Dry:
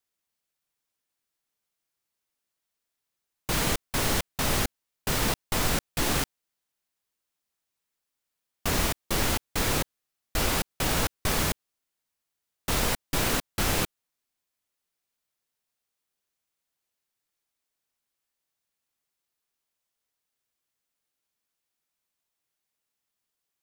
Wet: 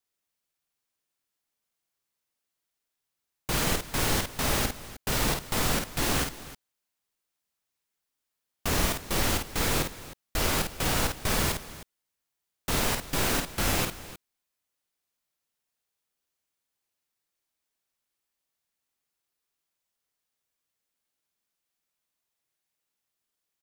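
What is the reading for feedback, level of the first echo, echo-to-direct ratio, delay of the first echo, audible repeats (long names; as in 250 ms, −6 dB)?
repeats not evenly spaced, −5.0 dB, −4.5 dB, 51 ms, 2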